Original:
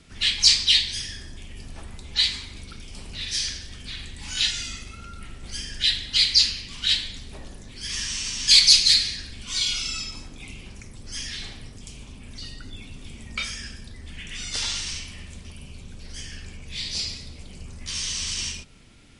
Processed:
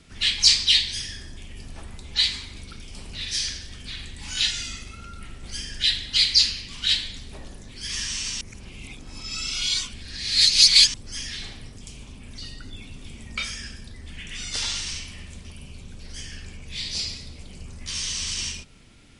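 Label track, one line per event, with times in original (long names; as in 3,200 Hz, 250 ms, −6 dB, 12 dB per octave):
8.410000	10.940000	reverse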